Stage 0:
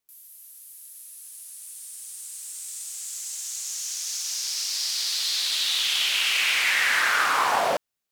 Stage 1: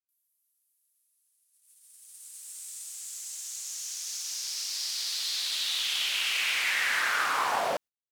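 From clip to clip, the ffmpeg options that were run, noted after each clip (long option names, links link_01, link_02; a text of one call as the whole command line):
ffmpeg -i in.wav -af "agate=range=-24dB:threshold=-38dB:ratio=16:detection=peak,volume=-5.5dB" out.wav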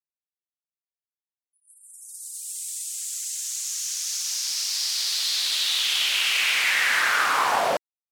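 ffmpeg -i in.wav -filter_complex "[0:a]afftfilt=real='re*gte(hypot(re,im),0.00158)':imag='im*gte(hypot(re,im),0.00158)':win_size=1024:overlap=0.75,asplit=2[link_01][link_02];[link_02]acompressor=threshold=-39dB:ratio=6,volume=-2dB[link_03];[link_01][link_03]amix=inputs=2:normalize=0,volume=4.5dB" out.wav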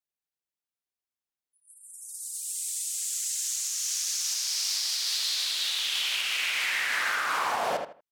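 ffmpeg -i in.wav -filter_complex "[0:a]alimiter=limit=-19.5dB:level=0:latency=1:release=356,asplit=2[link_01][link_02];[link_02]adelay=79,lowpass=frequency=2900:poles=1,volume=-5dB,asplit=2[link_03][link_04];[link_04]adelay=79,lowpass=frequency=2900:poles=1,volume=0.26,asplit=2[link_05][link_06];[link_06]adelay=79,lowpass=frequency=2900:poles=1,volume=0.26[link_07];[link_01][link_03][link_05][link_07]amix=inputs=4:normalize=0" out.wav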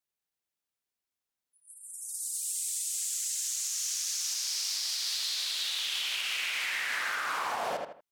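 ffmpeg -i in.wav -af "acompressor=threshold=-33dB:ratio=4,volume=2.5dB" out.wav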